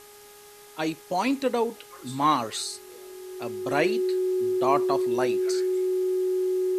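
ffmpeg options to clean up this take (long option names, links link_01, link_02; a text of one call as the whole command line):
ffmpeg -i in.wav -af "bandreject=frequency=413:width_type=h:width=4,bandreject=frequency=826:width_type=h:width=4,bandreject=frequency=1239:width_type=h:width=4,bandreject=frequency=1652:width_type=h:width=4,bandreject=frequency=2065:width_type=h:width=4,bandreject=frequency=370:width=30,afwtdn=0.0032" out.wav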